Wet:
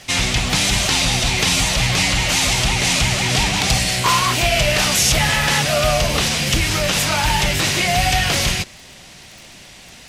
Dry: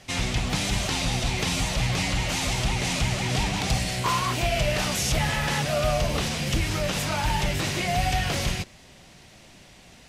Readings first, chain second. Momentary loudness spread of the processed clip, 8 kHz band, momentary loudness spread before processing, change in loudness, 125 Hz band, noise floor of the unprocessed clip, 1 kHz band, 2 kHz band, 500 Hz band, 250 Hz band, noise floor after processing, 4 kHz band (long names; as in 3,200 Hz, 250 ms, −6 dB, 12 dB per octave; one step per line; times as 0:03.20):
2 LU, +12.0 dB, 2 LU, +9.0 dB, +5.0 dB, −51 dBFS, +7.5 dB, +10.5 dB, +6.5 dB, +5.0 dB, −42 dBFS, +11.5 dB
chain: surface crackle 30 per second −42 dBFS
tilt shelving filter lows −3.5 dB, about 1,200 Hz
level +8.5 dB